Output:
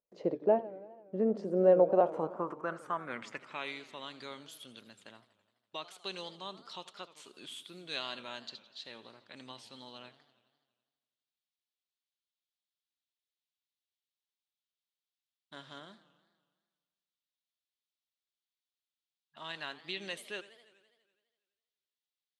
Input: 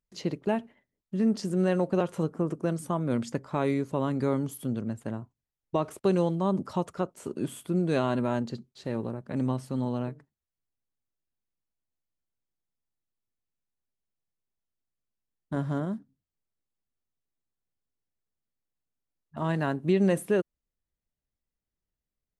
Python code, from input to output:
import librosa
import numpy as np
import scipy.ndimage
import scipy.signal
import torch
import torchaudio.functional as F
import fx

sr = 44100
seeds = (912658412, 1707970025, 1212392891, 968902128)

y = fx.filter_sweep_bandpass(x, sr, from_hz=550.0, to_hz=3600.0, start_s=1.75, end_s=3.85, q=2.9)
y = fx.echo_warbled(y, sr, ms=83, feedback_pct=70, rate_hz=2.8, cents=210, wet_db=-17)
y = y * librosa.db_to_amplitude(7.5)